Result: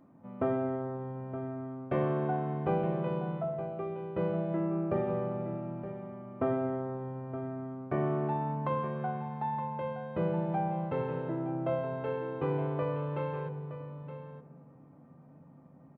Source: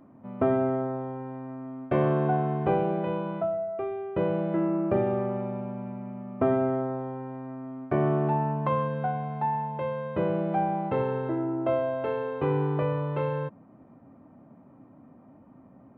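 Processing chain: resonator 170 Hz, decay 0.52 s, harmonics odd, mix 80%; echo 0.919 s -12 dB; on a send at -18 dB: reverb RT60 3.6 s, pre-delay 77 ms; on the sum: gain +7 dB

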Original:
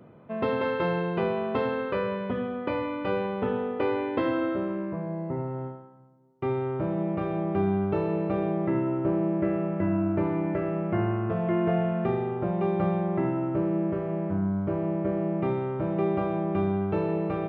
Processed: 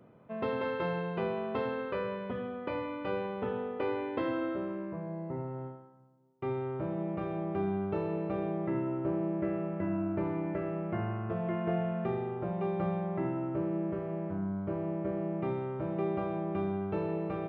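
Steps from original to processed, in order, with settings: notches 50/100/150/200/250/300/350 Hz; gain -6 dB

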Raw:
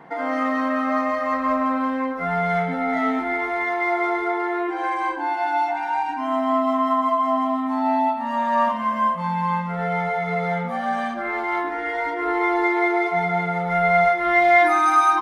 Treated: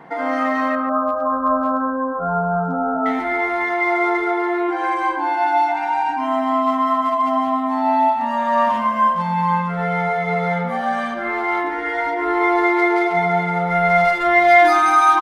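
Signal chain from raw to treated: 0.75–3.06 brick-wall FIR low-pass 1600 Hz; speakerphone echo 0.14 s, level -8 dB; gain +3 dB

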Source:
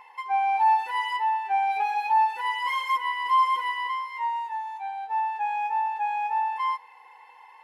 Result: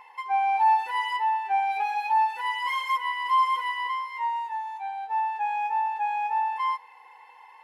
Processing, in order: 1.6–3.8 low shelf 420 Hz -7 dB

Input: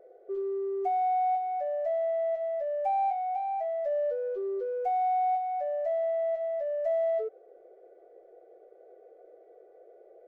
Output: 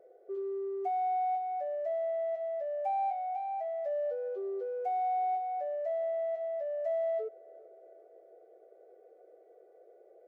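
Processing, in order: HPF 48 Hz; darkening echo 0.397 s, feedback 66%, low-pass 1700 Hz, level -23 dB; gain -4 dB

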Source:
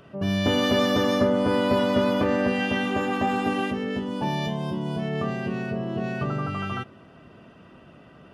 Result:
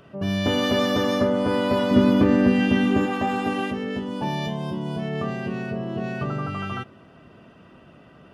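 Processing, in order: 1.91–3.06 resonant low shelf 430 Hz +6.5 dB, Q 1.5

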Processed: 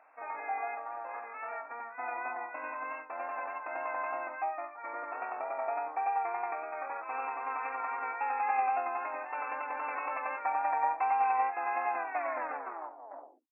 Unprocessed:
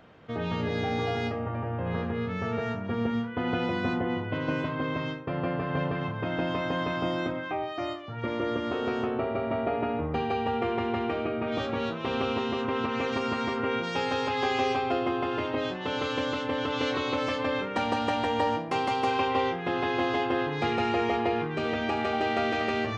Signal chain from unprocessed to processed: tape stop at the end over 2.64 s; wow and flutter 21 cents; tempo 1.7×; brick-wall FIR band-pass 260–2700 Hz; resonant low shelf 560 Hz -11.5 dB, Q 3; gain -5.5 dB

